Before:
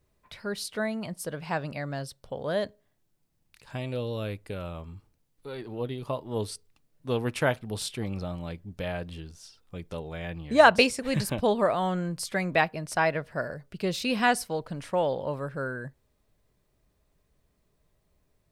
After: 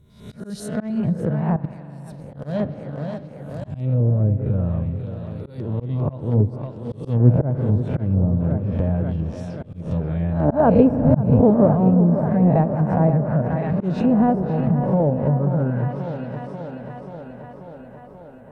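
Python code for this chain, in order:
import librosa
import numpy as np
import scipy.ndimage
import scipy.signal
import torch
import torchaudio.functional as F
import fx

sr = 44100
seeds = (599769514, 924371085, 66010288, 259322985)

p1 = fx.spec_swells(x, sr, rise_s=0.6)
p2 = fx.peak_eq(p1, sr, hz=2300.0, db=-11.5, octaves=2.6)
p3 = fx.filter_lfo_notch(p2, sr, shape='square', hz=5.0, low_hz=380.0, high_hz=4800.0, q=1.7)
p4 = np.where(np.abs(p3) >= 10.0 ** (-25.5 / 20.0), p3, 0.0)
p5 = p3 + F.gain(torch.from_numpy(p4), -11.0).numpy()
p6 = fx.peak_eq(p5, sr, hz=120.0, db=14.5, octaves=2.4)
p7 = p6 + fx.echo_tape(p6, sr, ms=535, feedback_pct=75, wet_db=-9, lp_hz=5100.0, drive_db=5.0, wow_cents=11, dry=0)
p8 = fx.level_steps(p7, sr, step_db=21, at=(1.56, 2.34))
p9 = fx.rev_spring(p8, sr, rt60_s=3.4, pass_ms=(42,), chirp_ms=70, drr_db=15.5)
p10 = fx.auto_swell(p9, sr, attack_ms=192.0)
p11 = fx.env_lowpass_down(p10, sr, base_hz=790.0, full_db=-19.0)
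y = F.gain(torch.from_numpy(p11), 4.5).numpy()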